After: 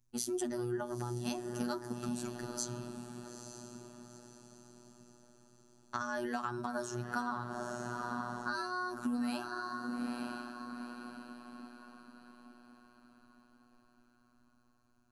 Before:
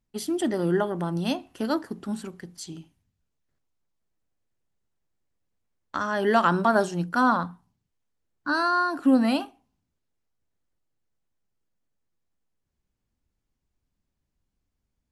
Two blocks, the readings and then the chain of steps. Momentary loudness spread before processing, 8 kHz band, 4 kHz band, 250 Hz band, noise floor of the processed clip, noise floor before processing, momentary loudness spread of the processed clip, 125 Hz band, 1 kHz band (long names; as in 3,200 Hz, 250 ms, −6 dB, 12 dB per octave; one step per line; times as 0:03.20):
18 LU, +0.5 dB, −9.5 dB, −11.5 dB, −69 dBFS, −81 dBFS, 19 LU, −9.5 dB, −13.0 dB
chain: thirty-one-band graphic EQ 250 Hz −8 dB, 500 Hz −12 dB, 800 Hz −3 dB, 2,000 Hz −7 dB, 3,150 Hz −8 dB, 6,300 Hz +9 dB, 10,000 Hz +6 dB
feedback delay with all-pass diffusion 888 ms, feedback 44%, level −12 dB
downward compressor 6 to 1, threshold −33 dBFS, peak gain reduction 15 dB
phases set to zero 121 Hz
low-shelf EQ 170 Hz +6.5 dB
level +1 dB